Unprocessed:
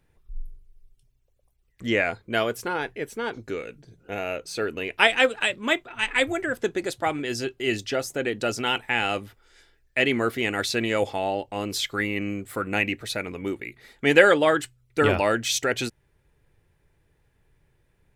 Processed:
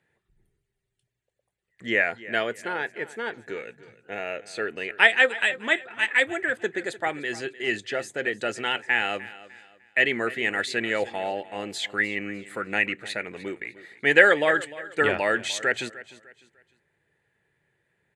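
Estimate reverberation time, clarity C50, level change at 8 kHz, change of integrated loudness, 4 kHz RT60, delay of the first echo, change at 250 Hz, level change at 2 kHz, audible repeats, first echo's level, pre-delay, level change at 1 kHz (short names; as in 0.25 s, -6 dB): none, none, -6.0 dB, 0.0 dB, none, 0.301 s, -5.5 dB, +3.0 dB, 2, -17.5 dB, none, -2.5 dB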